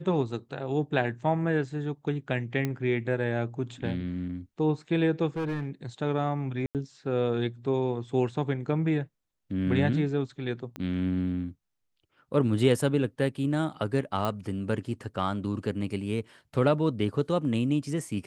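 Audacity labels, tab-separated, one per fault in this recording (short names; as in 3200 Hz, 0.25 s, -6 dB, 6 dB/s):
2.650000	2.650000	pop -16 dBFS
5.280000	5.700000	clipped -27 dBFS
6.660000	6.750000	gap 88 ms
10.760000	10.760000	pop -23 dBFS
14.250000	14.250000	pop -16 dBFS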